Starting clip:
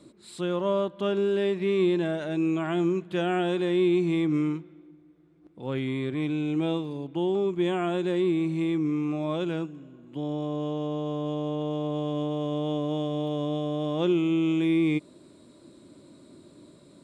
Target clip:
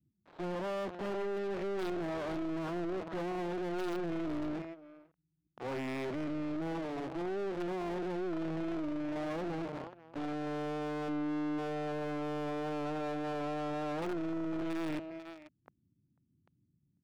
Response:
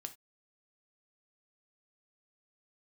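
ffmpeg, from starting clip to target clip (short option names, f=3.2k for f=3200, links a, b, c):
-filter_complex "[0:a]acrossover=split=130[a][b];[b]acrusher=bits=4:dc=4:mix=0:aa=0.000001[c];[a][c]amix=inputs=2:normalize=0,lowpass=f=6.8k:w=0.5412,lowpass=f=6.8k:w=1.3066,adynamicsmooth=sensitivity=4.5:basefreq=860,aeval=exprs='0.316*(cos(1*acos(clip(val(0)/0.316,-1,1)))-cos(1*PI/2))+0.1*(cos(3*acos(clip(val(0)/0.316,-1,1)))-cos(3*PI/2))+0.112*(cos(4*acos(clip(val(0)/0.316,-1,1)))-cos(4*PI/2))+0.0447*(cos(5*acos(clip(val(0)/0.316,-1,1)))-cos(5*PI/2))+0.126*(cos(6*acos(clip(val(0)/0.316,-1,1)))-cos(6*PI/2))':c=same,asplit=3[d][e][f];[d]afade=t=out:st=11.08:d=0.02[g];[e]equalizer=f=300:w=8:g=9.5,afade=t=in:st=11.08:d=0.02,afade=t=out:st=11.57:d=0.02[h];[f]afade=t=in:st=11.57:d=0.02[i];[g][h][i]amix=inputs=3:normalize=0,asplit=2[j][k];[k]adelay=495.6,volume=-30dB,highshelf=f=4k:g=-11.2[l];[j][l]amix=inputs=2:normalize=0,agate=range=-11dB:threshold=-49dB:ratio=16:detection=peak,asoftclip=type=tanh:threshold=-28dB,asplit=2[m][n];[n]highpass=f=720:p=1,volume=30dB,asoftclip=type=tanh:threshold=-28dB[o];[m][o]amix=inputs=2:normalize=0,lowpass=f=2.7k:p=1,volume=-6dB,volume=-3dB"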